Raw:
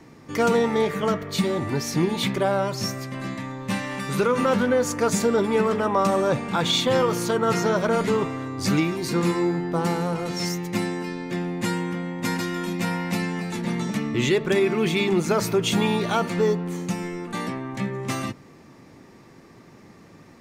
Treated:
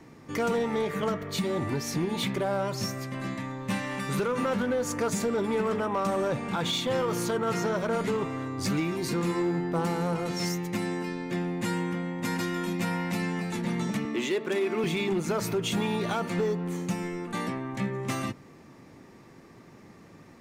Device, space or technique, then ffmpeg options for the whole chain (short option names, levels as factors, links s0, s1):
limiter into clipper: -filter_complex "[0:a]alimiter=limit=0.158:level=0:latency=1:release=153,asoftclip=type=hard:threshold=0.112,equalizer=f=4800:w=1.5:g=-2,asettb=1/sr,asplit=3[s0][s1][s2];[s0]atrim=end=14.054[s3];[s1]atrim=start=14.05:end=14.84,asetpts=PTS-STARTPTS,afade=t=in:d=0.004:c=qsin,afade=t=out:st=0.786:d=0.004:c=qsin,highpass=f=220:w=0.5412,highpass=f=220:w=1.3066[s4];[s2]atrim=start=14.836[s5];[s3][s4]acrossfade=d=0.004:c1=hsin:c2=qsin[s6];[s6][s5]acrossfade=d=0.004:c1=qsin:c2=hsin,volume=0.75"